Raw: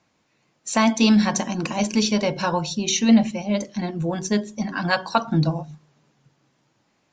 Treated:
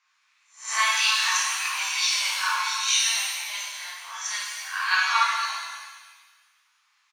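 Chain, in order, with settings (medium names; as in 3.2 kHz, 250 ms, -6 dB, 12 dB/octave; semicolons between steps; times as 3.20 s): reverse spectral sustain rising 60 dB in 0.35 s; elliptic high-pass 1.1 kHz, stop band 70 dB; treble shelf 4.6 kHz -5 dB; speakerphone echo 320 ms, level -26 dB; pitch-shifted reverb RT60 1.4 s, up +7 st, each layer -8 dB, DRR -6 dB; trim -2.5 dB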